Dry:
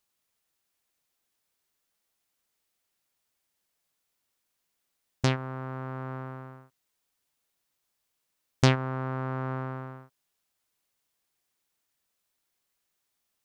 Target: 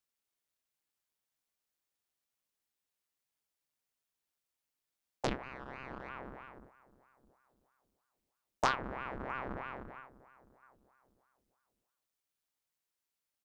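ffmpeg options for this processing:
ffmpeg -i in.wav -filter_complex "[0:a]asplit=2[link_01][link_02];[link_02]adelay=665,lowpass=frequency=820:poles=1,volume=-21dB,asplit=2[link_03][link_04];[link_04]adelay=665,lowpass=frequency=820:poles=1,volume=0.36,asplit=2[link_05][link_06];[link_06]adelay=665,lowpass=frequency=820:poles=1,volume=0.36[link_07];[link_01][link_03][link_05][link_07]amix=inputs=4:normalize=0,asettb=1/sr,asplit=3[link_08][link_09][link_10];[link_08]atrim=end=5.434[link_11];[link_09]atrim=start=5.43:end=6.09,asetpts=PTS-STARTPTS,afade=type=in:duration=0.004:curve=qsin,afade=type=out:start_time=0.656:duration=0.004:curve=qsin,asplit=2[link_12][link_13];[link_13]highpass=frequency=720:poles=1,volume=14dB,asoftclip=type=tanh:threshold=-24.5dB[link_14];[link_12][link_14]amix=inputs=2:normalize=0,lowpass=frequency=2700:poles=1,volume=-6dB[link_15];[link_10]atrim=start=6.086[link_16];[link_11][link_15]acrossfade=duration=0.004:curve1=hsin:curve2=qsin[link_17];[link_17][link_16]acrossfade=duration=0.004:curve1=qsin:curve2=hsin,aeval=exprs='val(0)*sin(2*PI*700*n/s+700*0.9/3.1*sin(2*PI*3.1*n/s))':channel_layout=same,volume=-6.5dB" out.wav

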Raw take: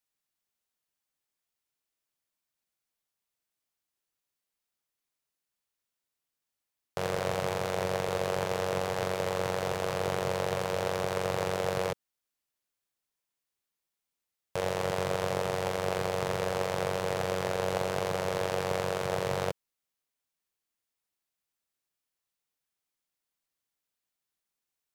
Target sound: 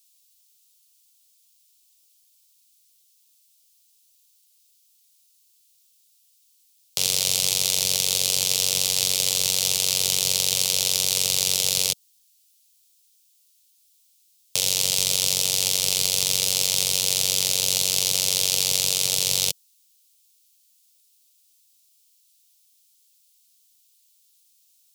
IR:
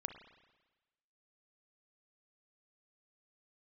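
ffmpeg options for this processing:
-filter_complex "[0:a]acrossover=split=280|3000[link_01][link_02][link_03];[link_02]acompressor=threshold=-36dB:ratio=3[link_04];[link_01][link_04][link_03]amix=inputs=3:normalize=0,aexciter=amount=10.9:drive=8.8:freq=2600,volume=-3dB"

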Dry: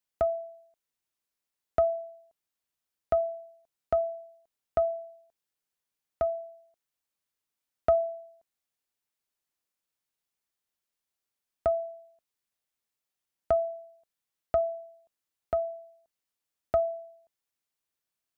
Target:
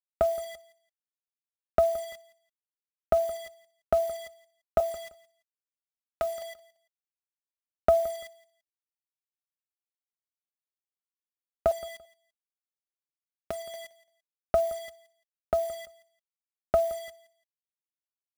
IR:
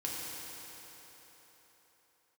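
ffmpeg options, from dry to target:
-filter_complex "[0:a]asettb=1/sr,asplit=3[link_01][link_02][link_03];[link_01]atrim=end=4.804[link_04];[link_02]atrim=start=4.8:end=6.42,asetpts=PTS-STARTPTS,afade=type=in:duration=0.004:curve=qsin,afade=type=out:start_time=1.616:duration=0.004:curve=qsin,tiltshelf=frequency=1100:gain=-8.5[link_05];[link_03]atrim=start=6.416[link_06];[link_04][link_05]acrossfade=duration=0.004:curve1=hsin:curve2=qsin[link_07];[link_07][link_06]acrossfade=duration=0.004:curve1=qsin:curve2=hsin,asettb=1/sr,asplit=3[link_08][link_09][link_10];[link_08]atrim=end=11.714[link_11];[link_09]atrim=start=11.71:end=13.74,asetpts=PTS-STARTPTS,afade=type=in:duration=0.004:curve=qsin,afade=type=out:start_time=2.026:duration=0.004:curve=qsin,acompressor=threshold=-43dB:ratio=2.5[link_12];[link_10]atrim=start=13.736[link_13];[link_11][link_12]acrossfade=duration=0.004:curve1=hsin:curve2=qsin[link_14];[link_14][link_13]acrossfade=duration=0.004:curve1=qsin:curve2=hsin,acrusher=bits=7:mix=0:aa=0.000001,aecho=1:1:5.1:0.44,aecho=1:1:170|340:0.106|0.0254,volume=4dB"

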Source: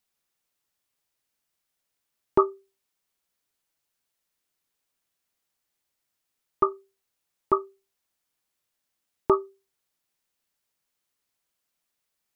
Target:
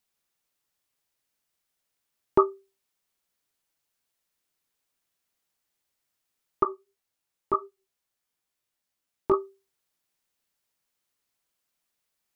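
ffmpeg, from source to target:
ffmpeg -i in.wav -filter_complex "[0:a]asettb=1/sr,asplit=3[link_01][link_02][link_03];[link_01]atrim=end=6.634[link_04];[link_02]atrim=start=6.63:end=9.34,asetpts=PTS-STARTPTS,afade=type=in:duration=0.004:curve=qsin,afade=type=out:start_time=2.706:duration=0.004:curve=qsin,flanger=delay=16.5:depth=3.1:speed=2.7[link_05];[link_03]atrim=start=9.336[link_06];[link_04][link_05]acrossfade=duration=0.004:curve1=hsin:curve2=qsin[link_07];[link_07][link_06]acrossfade=duration=0.004:curve1=qsin:curve2=hsin" out.wav

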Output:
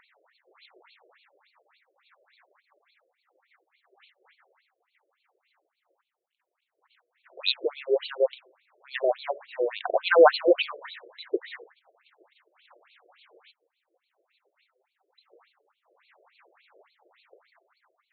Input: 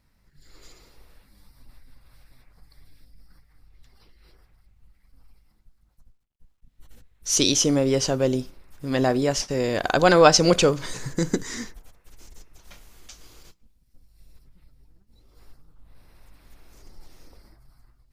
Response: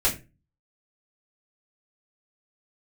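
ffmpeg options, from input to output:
-af "acompressor=mode=upward:threshold=-36dB:ratio=2.5,afftfilt=real='re*between(b*sr/1024,460*pow(3200/460,0.5+0.5*sin(2*PI*3.5*pts/sr))/1.41,460*pow(3200/460,0.5+0.5*sin(2*PI*3.5*pts/sr))*1.41)':imag='im*between(b*sr/1024,460*pow(3200/460,0.5+0.5*sin(2*PI*3.5*pts/sr))/1.41,460*pow(3200/460,0.5+0.5*sin(2*PI*3.5*pts/sr))*1.41)':win_size=1024:overlap=0.75,volume=1.5dB"

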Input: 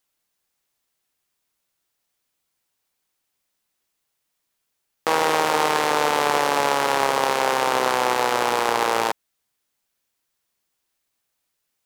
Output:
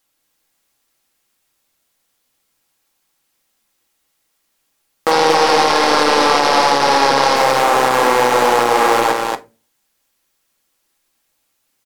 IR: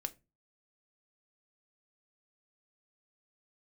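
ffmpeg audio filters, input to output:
-filter_complex "[0:a]asettb=1/sr,asplit=3[link_01][link_02][link_03];[link_01]atrim=end=5.114[link_04];[link_02]atrim=start=5.11:end=7.36,asetpts=PTS-STARTPTS,afade=type=in:duration=0.004:curve=qsin,afade=type=out:start_time=2.246:duration=0.004:curve=qsin,lowpass=frequency=5200:width_type=q:width=2.7[link_05];[link_03]atrim=start=7.356[link_06];[link_04][link_05]acrossfade=duration=0.004:curve1=hsin:curve2=qsin[link_07];[link_07][link_06]acrossfade=duration=0.004:curve1=qsin:curve2=hsin,asoftclip=type=tanh:threshold=-9.5dB,aecho=1:1:233:0.668[link_08];[1:a]atrim=start_sample=2205,asetrate=39690,aresample=44100[link_09];[link_08][link_09]afir=irnorm=-1:irlink=0,alimiter=level_in=9.5dB:limit=-1dB:release=50:level=0:latency=1,volume=-1dB"

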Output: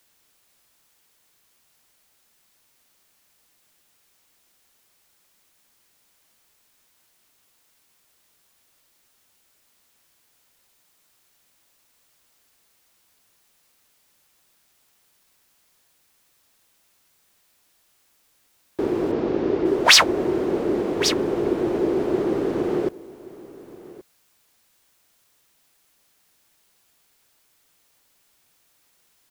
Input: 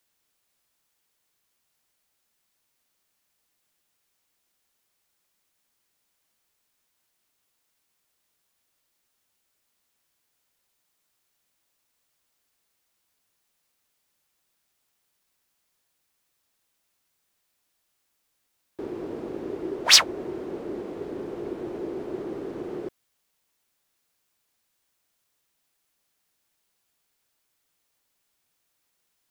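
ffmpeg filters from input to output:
ffmpeg -i in.wav -filter_complex "[0:a]asplit=3[link_01][link_02][link_03];[link_01]afade=type=out:start_time=19.11:duration=0.02[link_04];[link_02]lowpass=frequency=5800:width=0.5412,lowpass=frequency=5800:width=1.3066,afade=type=in:start_time=19.11:duration=0.02,afade=type=out:start_time=19.64:duration=0.02[link_05];[link_03]afade=type=in:start_time=19.64:duration=0.02[link_06];[link_04][link_05][link_06]amix=inputs=3:normalize=0,asplit=2[link_07][link_08];[link_08]aecho=0:1:1125:0.106[link_09];[link_07][link_09]amix=inputs=2:normalize=0,alimiter=level_in=12dB:limit=-1dB:release=50:level=0:latency=1,volume=-1dB" out.wav

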